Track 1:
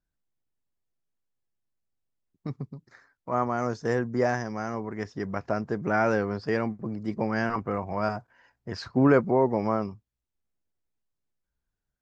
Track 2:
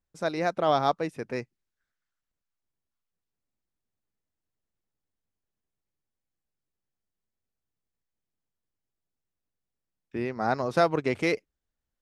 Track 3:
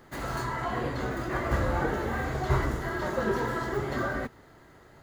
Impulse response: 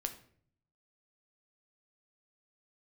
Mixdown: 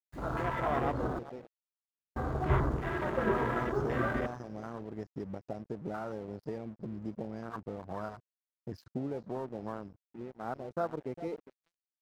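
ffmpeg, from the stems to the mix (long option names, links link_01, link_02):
-filter_complex "[0:a]aemphasis=mode=production:type=75kf,acompressor=threshold=-33dB:ratio=5,volume=-2.5dB,asplit=3[link_01][link_02][link_03];[link_02]volume=-16.5dB[link_04];[link_03]volume=-21dB[link_05];[1:a]volume=-10.5dB,asplit=2[link_06][link_07];[link_07]volume=-11dB[link_08];[2:a]volume=-4dB,asplit=3[link_09][link_10][link_11];[link_09]atrim=end=1.19,asetpts=PTS-STARTPTS,afade=type=out:start_time=1.186:duration=0.004:curve=hsin[link_12];[link_10]atrim=start=1.19:end=2.16,asetpts=PTS-STARTPTS,volume=0[link_13];[link_11]atrim=start=2.16,asetpts=PTS-STARTPTS,afade=type=in:duration=0.004:curve=hsin[link_14];[link_12][link_13][link_14]concat=n=3:v=0:a=1,asplit=3[link_15][link_16][link_17];[link_16]volume=-9.5dB[link_18];[link_17]volume=-15.5dB[link_19];[3:a]atrim=start_sample=2205[link_20];[link_04][link_18]amix=inputs=2:normalize=0[link_21];[link_21][link_20]afir=irnorm=-1:irlink=0[link_22];[link_05][link_08][link_19]amix=inputs=3:normalize=0,aecho=0:1:406|812|1218|1624:1|0.28|0.0784|0.022[link_23];[link_01][link_06][link_15][link_22][link_23]amix=inputs=5:normalize=0,afwtdn=0.0178,aeval=exprs='sgn(val(0))*max(abs(val(0))-0.00188,0)':channel_layout=same"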